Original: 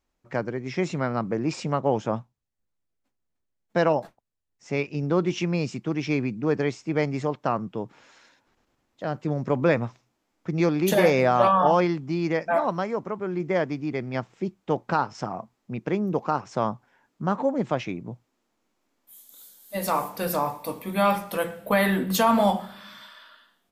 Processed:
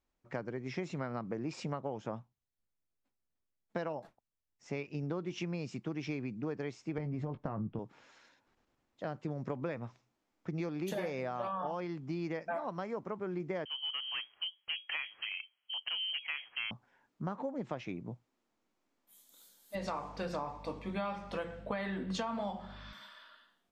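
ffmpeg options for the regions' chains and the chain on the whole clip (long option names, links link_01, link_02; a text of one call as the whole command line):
ffmpeg -i in.wav -filter_complex "[0:a]asettb=1/sr,asplit=3[link_01][link_02][link_03];[link_01]atrim=end=6.984[link_04];[link_02]atrim=start=6.98:end=7.79,asetpts=PTS-STARTPTS,afade=type=in:duration=0.004:curve=qsin,afade=type=out:start_time=0.806:duration=0.004:curve=qsin,aemphasis=mode=reproduction:type=riaa,acompressor=threshold=-20dB:ratio=6:attack=3.2:release=140:knee=1:detection=peak,asplit=2[link_05][link_06];[link_06]adelay=19,volume=-10dB[link_07];[link_05][link_07]amix=inputs=2:normalize=0,atrim=end_sample=35721[link_08];[link_03]atrim=start=7.786[link_09];[link_04][link_08]acrossfade=duration=0.004:curve1=hsin:curve2=qsin[link_10];[link_10][link_09]acrossfade=duration=0.004:curve1=qsin:curve2=hsin,asettb=1/sr,asplit=3[link_11][link_12][link_13];[link_11]atrim=end=13.654[link_14];[link_12]atrim=start=13.65:end=16.71,asetpts=PTS-STARTPTS,afade=type=in:duration=0.004:curve=qsin,afade=type=out:start_time=3.056:duration=0.004:curve=qsin,aeval=exprs='clip(val(0),-1,0.0708)':channel_layout=same,lowpass=frequency=2800:width_type=q:width=0.5098,lowpass=frequency=2800:width_type=q:width=0.6013,lowpass=frequency=2800:width_type=q:width=0.9,lowpass=frequency=2800:width_type=q:width=2.563,afreqshift=-3300[link_15];[link_13]atrim=start=16.706[link_16];[link_14][link_15]acrossfade=duration=0.004:curve1=hsin:curve2=qsin[link_17];[link_17][link_16]acrossfade=duration=0.004:curve1=qsin:curve2=hsin,asettb=1/sr,asplit=3[link_18][link_19][link_20];[link_18]atrim=end=19.754[link_21];[link_19]atrim=start=19.75:end=22.93,asetpts=PTS-STARTPTS,afade=type=in:duration=0.004:curve=qsin,afade=type=out:start_time=3.176:duration=0.004:curve=qsin,lowpass=frequency=6600:width=0.5412,lowpass=frequency=6600:width=1.3066,aeval=exprs='val(0)+0.00631*(sin(2*PI*50*n/s)+sin(2*PI*2*50*n/s)/2+sin(2*PI*3*50*n/s)/3+sin(2*PI*4*50*n/s)/4+sin(2*PI*5*50*n/s)/5)':channel_layout=same[link_22];[link_20]atrim=start=22.926[link_23];[link_21][link_22]acrossfade=duration=0.004:curve1=hsin:curve2=qsin[link_24];[link_24][link_23]acrossfade=duration=0.004:curve1=qsin:curve2=hsin,highshelf=frequency=11000:gain=-12,acompressor=threshold=-27dB:ratio=10,volume=-6.5dB" out.wav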